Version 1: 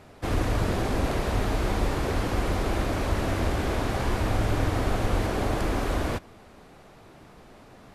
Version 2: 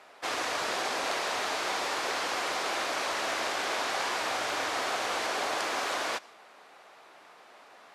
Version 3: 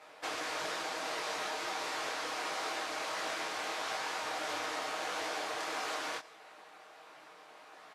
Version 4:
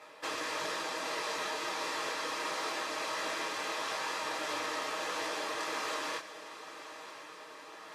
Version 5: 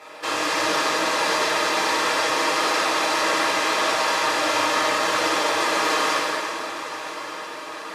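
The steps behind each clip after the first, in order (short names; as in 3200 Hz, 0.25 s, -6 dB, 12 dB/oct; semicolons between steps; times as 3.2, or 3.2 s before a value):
dynamic EQ 5900 Hz, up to +7 dB, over -54 dBFS, Q 0.71; HPF 760 Hz 12 dB/oct; high shelf 8700 Hz -10 dB; gain +2.5 dB
comb 6.4 ms, depth 58%; compressor, threshold -32 dBFS, peak gain reduction 6.5 dB; detuned doubles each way 53 cents; gain +1.5 dB
notch comb 730 Hz; diffused feedback echo 1.018 s, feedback 43%, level -13.5 dB; reverse; upward compressor, threshold -46 dBFS; reverse; gain +2.5 dB
plate-style reverb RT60 3 s, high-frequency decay 0.75×, DRR -5 dB; gain +8.5 dB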